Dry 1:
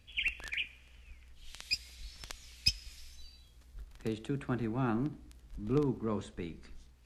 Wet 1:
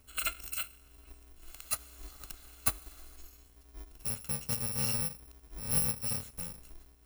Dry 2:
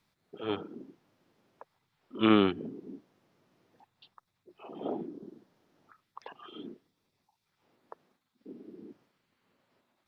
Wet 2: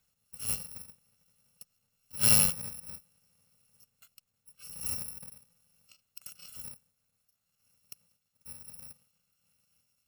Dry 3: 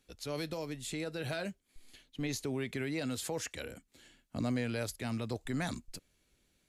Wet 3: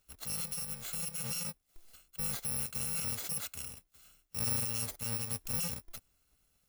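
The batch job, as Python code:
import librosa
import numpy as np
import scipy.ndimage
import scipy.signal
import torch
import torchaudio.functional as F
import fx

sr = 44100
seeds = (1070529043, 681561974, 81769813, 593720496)

y = fx.bit_reversed(x, sr, seeds[0], block=128)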